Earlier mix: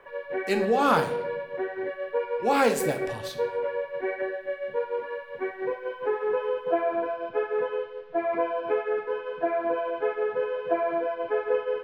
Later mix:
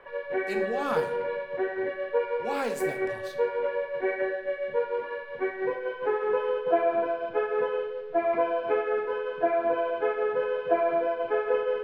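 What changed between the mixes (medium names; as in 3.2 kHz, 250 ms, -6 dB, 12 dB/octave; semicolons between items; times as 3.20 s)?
speech -9.0 dB; background: send +11.0 dB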